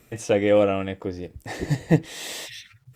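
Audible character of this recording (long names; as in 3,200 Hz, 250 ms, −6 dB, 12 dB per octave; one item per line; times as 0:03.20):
a quantiser's noise floor 12 bits, dither none
Opus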